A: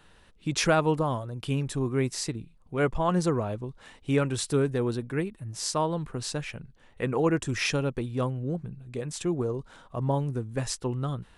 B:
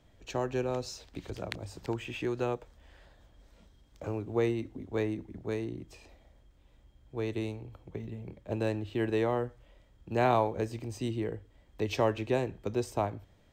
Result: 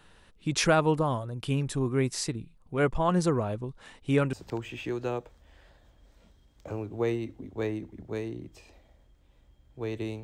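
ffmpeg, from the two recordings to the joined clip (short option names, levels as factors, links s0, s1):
-filter_complex "[0:a]apad=whole_dur=10.23,atrim=end=10.23,atrim=end=4.332[s0];[1:a]atrim=start=1.688:end=7.59[s1];[s0][s1]acrossfade=d=0.004:c1=hsin:c2=hsin"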